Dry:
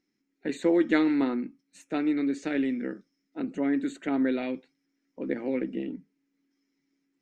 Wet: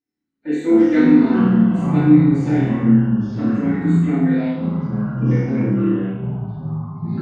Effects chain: flutter echo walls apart 4.6 m, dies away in 0.79 s; FDN reverb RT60 0.69 s, low-frequency decay 1.35×, high-frequency decay 0.35×, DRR -8.5 dB; ever faster or slower copies 85 ms, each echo -5 st, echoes 3; spectral noise reduction 12 dB; trim -8.5 dB

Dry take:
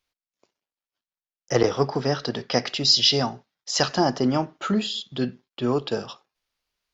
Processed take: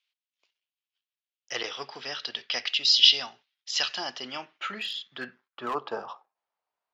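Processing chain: band-pass sweep 3 kHz -> 810 Hz, 4.30–6.31 s; 4.73–5.75 s: overload inside the chain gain 31.5 dB; trim +5.5 dB

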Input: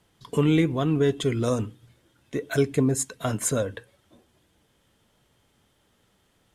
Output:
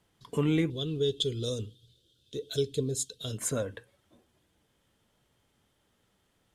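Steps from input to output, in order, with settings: 0.70–3.38 s: FFT filter 100 Hz 0 dB, 290 Hz -8 dB, 450 Hz +2 dB, 810 Hz -21 dB, 1.5 kHz -13 dB, 2.1 kHz -19 dB, 3.5 kHz +13 dB, 5.4 kHz +4 dB, 10 kHz -1 dB; trim -6 dB

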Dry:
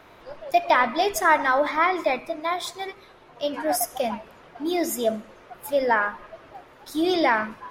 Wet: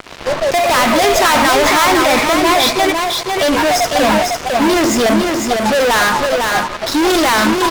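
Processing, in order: inverse Chebyshev low-pass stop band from 12 kHz, stop band 50 dB; fuzz box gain 42 dB, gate -46 dBFS; delay 502 ms -4 dB; trim +1.5 dB

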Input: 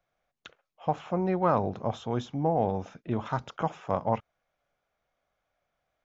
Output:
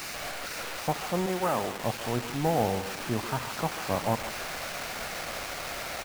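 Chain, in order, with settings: one-bit delta coder 16 kbps, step -31.5 dBFS; 1.26–1.83 s: high-pass 350 Hz 6 dB/octave; speakerphone echo 140 ms, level -12 dB; word length cut 6-bit, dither none

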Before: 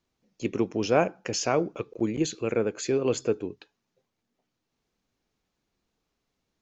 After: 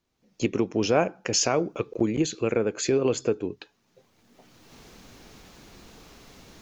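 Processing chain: recorder AGC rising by 21 dB/s; 1.33–1.77 s: treble shelf 6.3 kHz +6.5 dB

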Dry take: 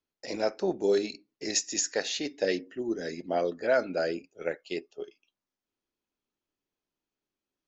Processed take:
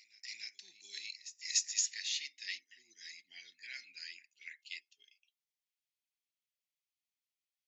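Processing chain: elliptic high-pass 2 kHz, stop band 40 dB; reverse echo 293 ms -18 dB; trim -3 dB

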